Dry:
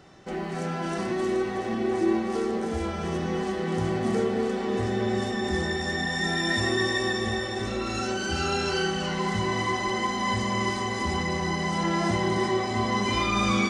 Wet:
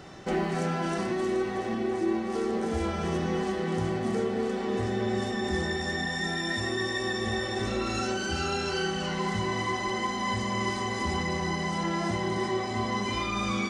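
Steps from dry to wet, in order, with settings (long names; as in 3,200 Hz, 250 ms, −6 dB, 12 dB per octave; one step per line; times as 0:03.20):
speech leveller 0.5 s
level −2.5 dB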